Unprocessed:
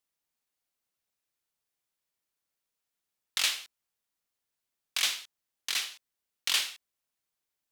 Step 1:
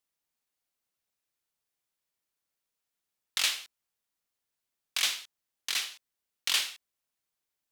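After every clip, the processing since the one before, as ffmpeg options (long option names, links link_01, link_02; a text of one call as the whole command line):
ffmpeg -i in.wav -af anull out.wav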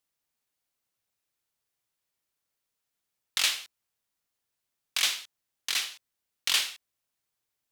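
ffmpeg -i in.wav -af "equalizer=frequency=110:width_type=o:width=0.42:gain=6,volume=2dB" out.wav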